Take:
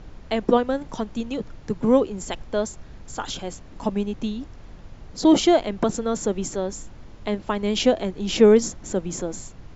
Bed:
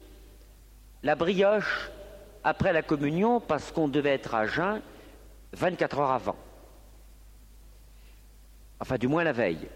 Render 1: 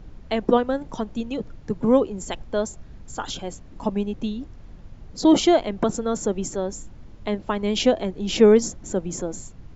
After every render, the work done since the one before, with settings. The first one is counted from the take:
broadband denoise 6 dB, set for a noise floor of −43 dBFS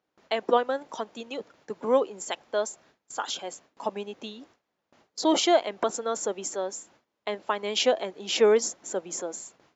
noise gate with hold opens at −31 dBFS
high-pass filter 530 Hz 12 dB per octave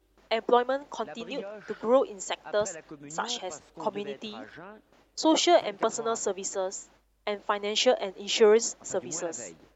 mix in bed −18 dB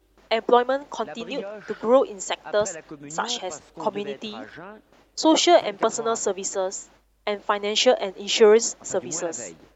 level +5 dB

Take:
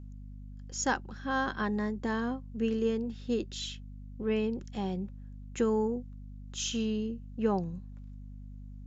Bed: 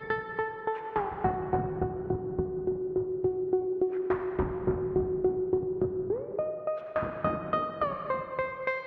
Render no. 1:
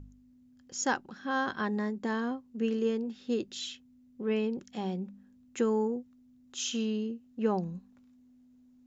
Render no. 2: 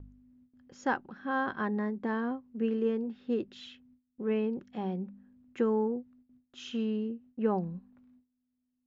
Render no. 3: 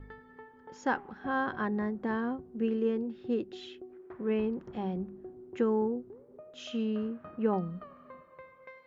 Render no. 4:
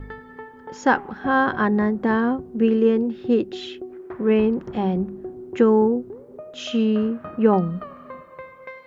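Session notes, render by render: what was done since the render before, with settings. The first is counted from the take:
hum removal 50 Hz, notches 4
low-pass filter 2,200 Hz 12 dB per octave; noise gate with hold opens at −55 dBFS
mix in bed −19.5 dB
level +12 dB

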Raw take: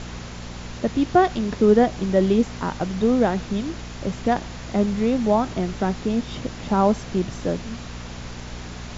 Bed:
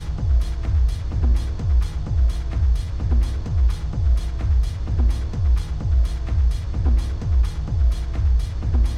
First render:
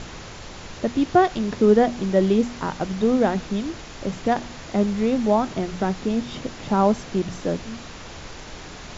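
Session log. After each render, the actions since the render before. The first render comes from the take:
hum removal 60 Hz, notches 4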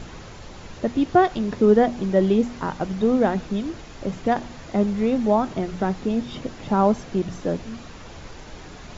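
broadband denoise 6 dB, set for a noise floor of −39 dBFS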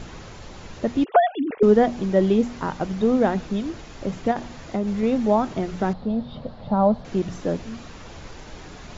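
0:01.04–0:01.63: three sine waves on the formant tracks
0:04.31–0:05.03: downward compressor, threshold −20 dBFS
0:05.93–0:07.05: drawn EQ curve 220 Hz 0 dB, 330 Hz −14 dB, 570 Hz +3 dB, 1,200 Hz −5 dB, 2,500 Hz −15 dB, 4,200 Hz −3 dB, 6,200 Hz −26 dB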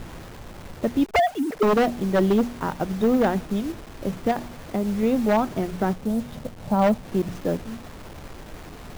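hold until the input has moved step −37.5 dBFS
wave folding −12.5 dBFS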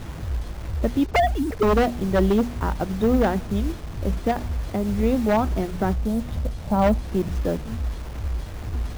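mix in bed −9 dB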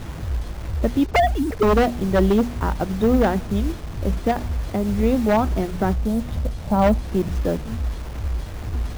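level +2 dB

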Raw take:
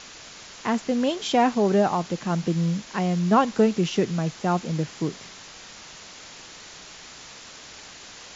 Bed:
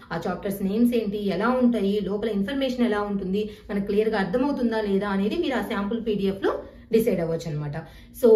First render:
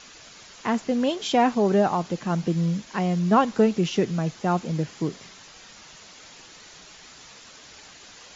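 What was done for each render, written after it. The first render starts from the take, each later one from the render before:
broadband denoise 6 dB, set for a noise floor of −44 dBFS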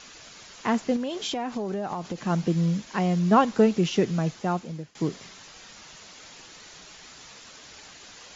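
0:00.96–0:02.25: downward compressor 10 to 1, threshold −26 dBFS
0:04.27–0:04.95: fade out, to −21 dB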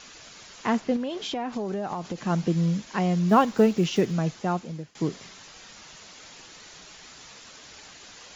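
0:00.77–0:01.53: high-frequency loss of the air 78 metres
0:03.29–0:04.13: one scale factor per block 7 bits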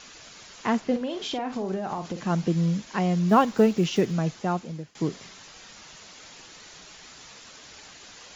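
0:00.88–0:02.21: double-tracking delay 48 ms −9 dB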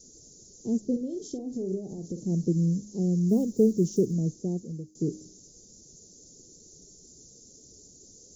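elliptic band-stop filter 420–6,200 Hz, stop band 60 dB
hum removal 103.7 Hz, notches 3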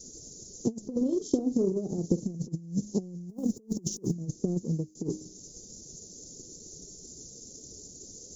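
compressor whose output falls as the input rises −31 dBFS, ratio −0.5
transient designer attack +6 dB, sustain −5 dB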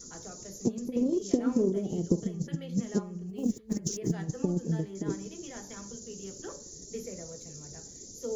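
mix in bed −19.5 dB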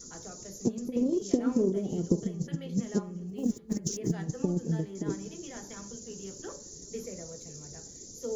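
tape delay 544 ms, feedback 51%, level −22 dB, low-pass 3,900 Hz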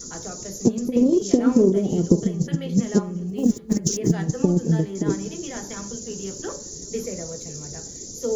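level +10 dB
brickwall limiter −3 dBFS, peak gain reduction 2 dB

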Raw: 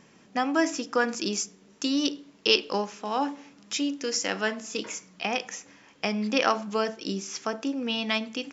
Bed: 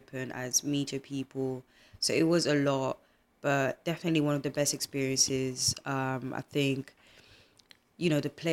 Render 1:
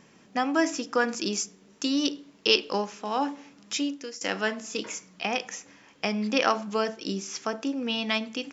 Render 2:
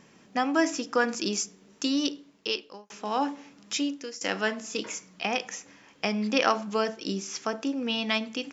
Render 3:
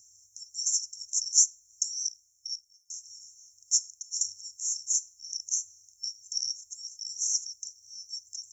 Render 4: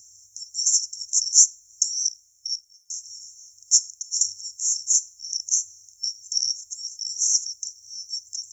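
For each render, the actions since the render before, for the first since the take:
0:03.81–0:04.21: fade out, to −20 dB
0:01.88–0:02.90: fade out
brick-wall band-stop 110–5,400 Hz; bass and treble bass −6 dB, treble +13 dB
level +7.5 dB; brickwall limiter −2 dBFS, peak gain reduction 1.5 dB

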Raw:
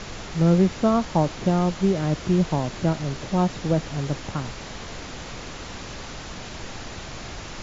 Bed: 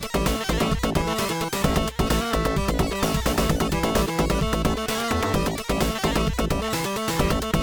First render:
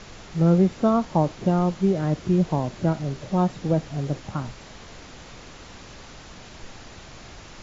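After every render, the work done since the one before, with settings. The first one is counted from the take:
noise reduction from a noise print 7 dB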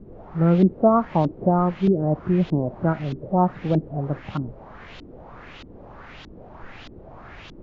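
auto-filter low-pass saw up 1.6 Hz 270–3,800 Hz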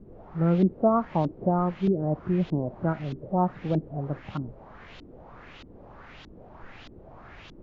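level −5 dB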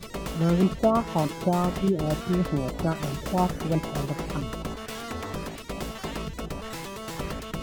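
mix in bed −11 dB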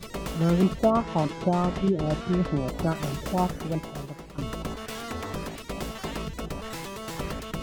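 0:00.90–0:02.68: high-frequency loss of the air 66 metres
0:03.22–0:04.38: fade out, to −15 dB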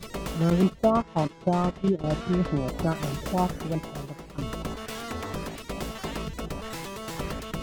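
0:00.50–0:02.04: noise gate −26 dBFS, range −12 dB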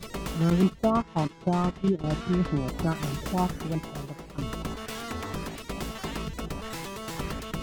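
dynamic equaliser 570 Hz, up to −6 dB, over −42 dBFS, Q 2.1

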